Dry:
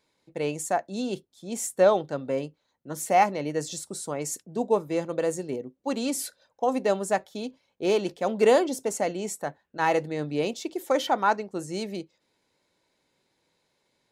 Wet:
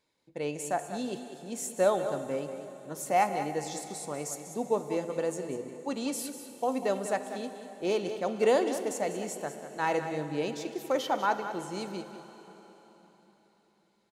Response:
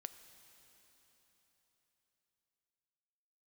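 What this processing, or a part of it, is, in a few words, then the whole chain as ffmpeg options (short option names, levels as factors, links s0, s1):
cave: -filter_complex "[0:a]aecho=1:1:194:0.282[s0];[1:a]atrim=start_sample=2205[s1];[s0][s1]afir=irnorm=-1:irlink=0"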